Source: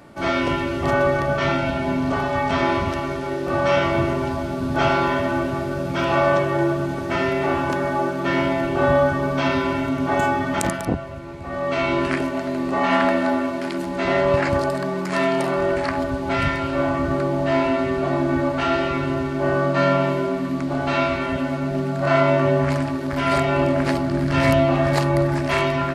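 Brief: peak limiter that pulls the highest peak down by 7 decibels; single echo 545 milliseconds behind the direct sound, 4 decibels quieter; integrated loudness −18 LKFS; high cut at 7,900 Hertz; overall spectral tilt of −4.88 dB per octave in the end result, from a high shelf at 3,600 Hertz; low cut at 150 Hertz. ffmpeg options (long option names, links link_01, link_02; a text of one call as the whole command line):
ffmpeg -i in.wav -af "highpass=150,lowpass=7900,highshelf=frequency=3600:gain=-5.5,alimiter=limit=-13.5dB:level=0:latency=1,aecho=1:1:545:0.631,volume=4dB" out.wav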